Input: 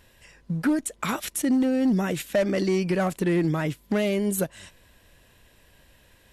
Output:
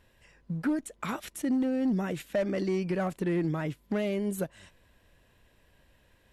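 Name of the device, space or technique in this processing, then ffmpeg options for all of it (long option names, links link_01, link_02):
behind a face mask: -af "highshelf=frequency=3400:gain=-7.5,volume=-5.5dB"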